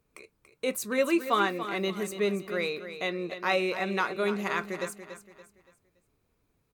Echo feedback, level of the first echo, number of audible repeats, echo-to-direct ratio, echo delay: 37%, -11.0 dB, 3, -10.5 dB, 0.285 s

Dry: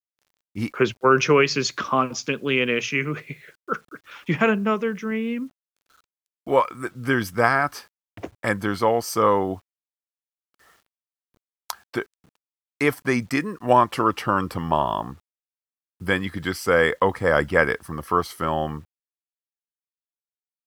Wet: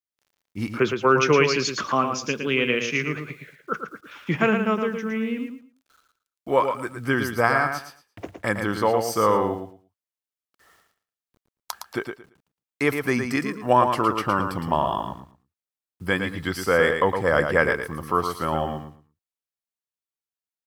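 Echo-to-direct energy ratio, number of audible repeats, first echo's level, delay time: -6.5 dB, 3, -6.5 dB, 0.113 s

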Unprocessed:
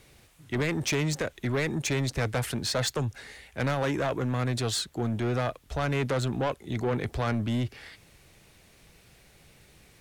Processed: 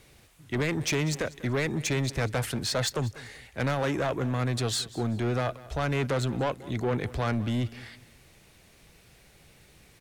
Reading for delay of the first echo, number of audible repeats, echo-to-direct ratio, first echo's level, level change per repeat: 0.193 s, 2, -18.5 dB, -19.0 dB, -10.0 dB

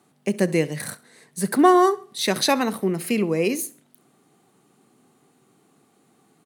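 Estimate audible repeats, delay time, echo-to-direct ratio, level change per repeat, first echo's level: 2, 66 ms, -20.5 dB, -10.5 dB, -21.0 dB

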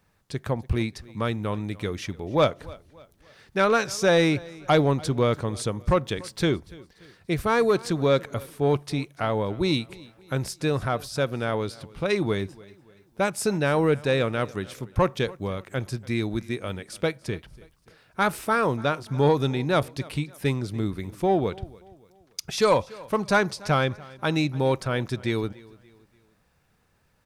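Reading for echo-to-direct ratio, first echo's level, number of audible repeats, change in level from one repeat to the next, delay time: -21.0 dB, -22.0 dB, 2, -7.5 dB, 0.289 s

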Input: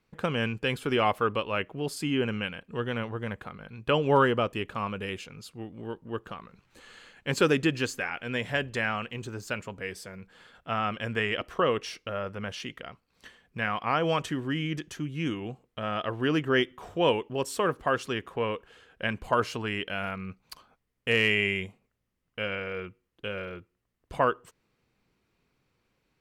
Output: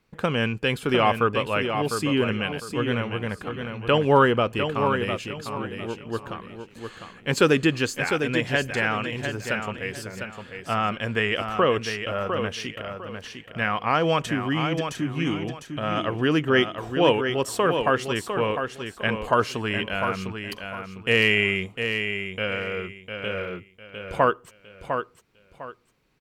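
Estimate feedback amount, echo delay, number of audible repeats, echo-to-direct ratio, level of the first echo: 27%, 0.703 s, 3, -6.5 dB, -7.0 dB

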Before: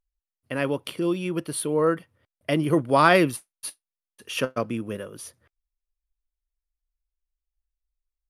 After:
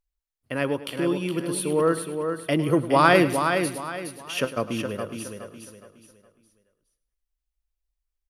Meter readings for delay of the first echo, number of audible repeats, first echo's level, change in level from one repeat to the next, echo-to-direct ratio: 0.103 s, 9, -15.0 dB, no steady repeat, -5.0 dB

